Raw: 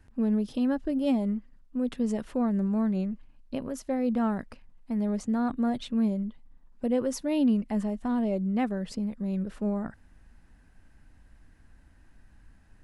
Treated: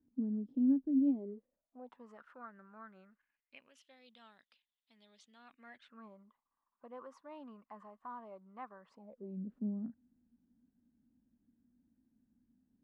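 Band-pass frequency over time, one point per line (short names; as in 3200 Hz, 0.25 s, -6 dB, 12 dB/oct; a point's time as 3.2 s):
band-pass, Q 7.3
1.01 s 270 Hz
2.24 s 1400 Hz
3.11 s 1400 Hz
3.94 s 3500 Hz
5.3 s 3500 Hz
6.07 s 1100 Hz
8.92 s 1100 Hz
9.38 s 240 Hz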